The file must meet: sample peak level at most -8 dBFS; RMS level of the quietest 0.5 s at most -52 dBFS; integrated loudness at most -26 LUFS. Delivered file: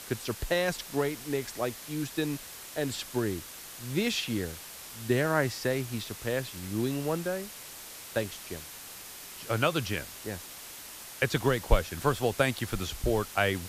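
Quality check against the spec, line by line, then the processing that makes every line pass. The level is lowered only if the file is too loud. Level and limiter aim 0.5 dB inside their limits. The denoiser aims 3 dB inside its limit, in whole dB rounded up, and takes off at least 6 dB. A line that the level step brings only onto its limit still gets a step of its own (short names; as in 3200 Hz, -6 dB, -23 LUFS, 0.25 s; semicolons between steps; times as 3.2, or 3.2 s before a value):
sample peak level -8.5 dBFS: OK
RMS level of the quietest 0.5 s -45 dBFS: fail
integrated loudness -31.0 LUFS: OK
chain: denoiser 10 dB, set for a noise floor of -45 dBFS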